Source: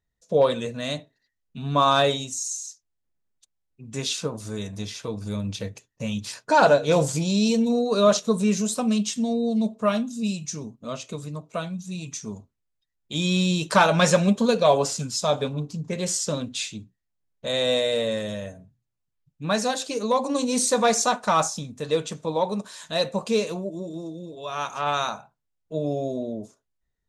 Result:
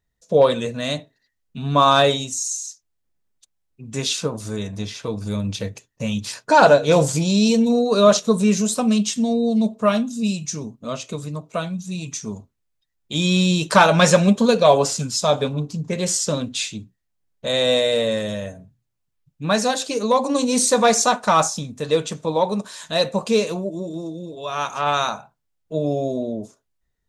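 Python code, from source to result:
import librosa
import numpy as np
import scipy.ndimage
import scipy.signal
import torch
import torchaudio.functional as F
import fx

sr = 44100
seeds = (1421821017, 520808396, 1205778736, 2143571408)

y = fx.high_shelf(x, sr, hz=6000.0, db=-7.0, at=(4.56, 5.06))
y = y * librosa.db_to_amplitude(4.5)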